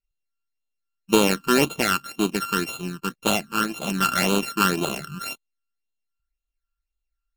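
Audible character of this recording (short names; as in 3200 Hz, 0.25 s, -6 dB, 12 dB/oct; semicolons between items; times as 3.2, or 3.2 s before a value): a buzz of ramps at a fixed pitch in blocks of 32 samples; phasing stages 12, 1.9 Hz, lowest notch 640–1800 Hz; AAC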